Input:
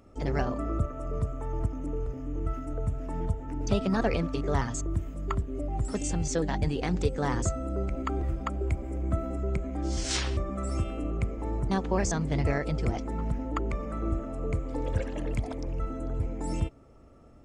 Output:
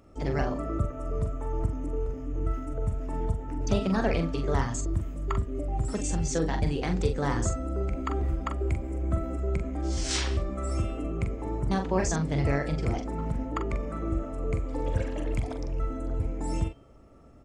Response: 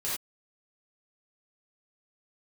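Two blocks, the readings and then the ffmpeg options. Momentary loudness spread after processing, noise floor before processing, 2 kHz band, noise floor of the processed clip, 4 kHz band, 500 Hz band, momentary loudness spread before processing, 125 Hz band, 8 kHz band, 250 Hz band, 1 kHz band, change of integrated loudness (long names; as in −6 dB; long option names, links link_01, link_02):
5 LU, −52 dBFS, +0.5 dB, −49 dBFS, +0.5 dB, +1.0 dB, 6 LU, +1.0 dB, +1.0 dB, +0.5 dB, +0.5 dB, +1.0 dB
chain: -filter_complex "[0:a]asplit=2[link_01][link_02];[link_02]adelay=43,volume=-7dB[link_03];[link_01][link_03]amix=inputs=2:normalize=0,bandreject=frequency=241.9:width_type=h:width=4,bandreject=frequency=483.8:width_type=h:width=4,bandreject=frequency=725.7:width_type=h:width=4,bandreject=frequency=967.6:width_type=h:width=4,bandreject=frequency=1209.5:width_type=h:width=4,bandreject=frequency=1451.4:width_type=h:width=4,bandreject=frequency=1693.3:width_type=h:width=4,bandreject=frequency=1935.2:width_type=h:width=4,bandreject=frequency=2177.1:width_type=h:width=4,bandreject=frequency=2419:width_type=h:width=4,bandreject=frequency=2660.9:width_type=h:width=4,bandreject=frequency=2902.8:width_type=h:width=4,bandreject=frequency=3144.7:width_type=h:width=4,bandreject=frequency=3386.6:width_type=h:width=4,bandreject=frequency=3628.5:width_type=h:width=4,bandreject=frequency=3870.4:width_type=h:width=4,bandreject=frequency=4112.3:width_type=h:width=4,bandreject=frequency=4354.2:width_type=h:width=4,bandreject=frequency=4596.1:width_type=h:width=4,bandreject=frequency=4838:width_type=h:width=4,bandreject=frequency=5079.9:width_type=h:width=4,bandreject=frequency=5321.8:width_type=h:width=4,bandreject=frequency=5563.7:width_type=h:width=4,bandreject=frequency=5805.6:width_type=h:width=4"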